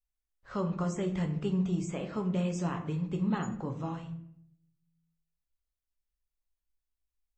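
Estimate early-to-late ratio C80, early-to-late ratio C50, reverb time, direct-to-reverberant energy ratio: 13.0 dB, 10.0 dB, 0.70 s, 3.5 dB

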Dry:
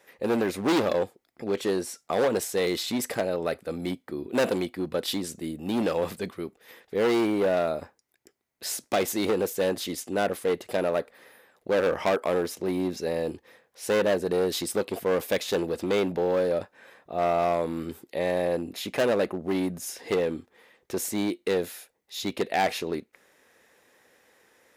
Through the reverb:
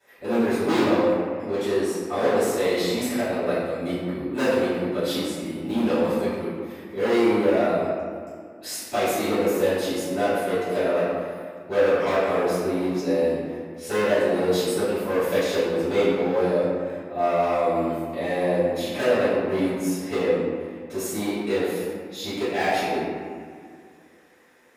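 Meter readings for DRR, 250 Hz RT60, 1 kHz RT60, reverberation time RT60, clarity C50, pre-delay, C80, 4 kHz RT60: −15.0 dB, 2.5 s, 2.0 s, 2.0 s, −2.0 dB, 3 ms, 0.0 dB, 1.2 s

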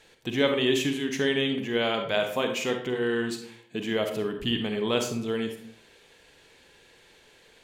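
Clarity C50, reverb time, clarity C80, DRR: 7.0 dB, 0.60 s, 11.0 dB, 5.0 dB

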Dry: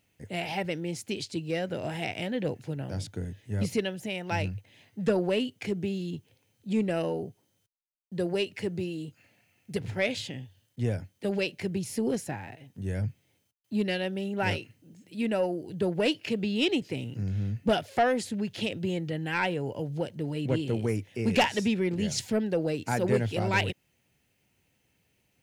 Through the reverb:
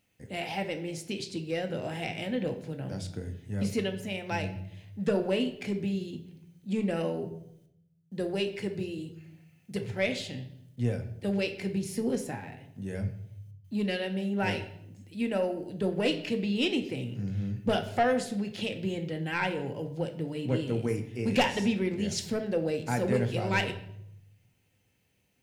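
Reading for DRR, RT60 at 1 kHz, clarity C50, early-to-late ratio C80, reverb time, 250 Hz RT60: 6.0 dB, 0.70 s, 11.0 dB, 14.5 dB, 0.75 s, 1.0 s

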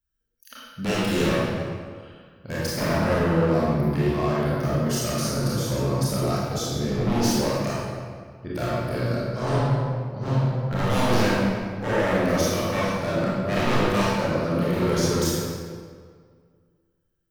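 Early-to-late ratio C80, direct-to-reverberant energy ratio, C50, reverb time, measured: −1.5 dB, −8.5 dB, −4.0 dB, 1.9 s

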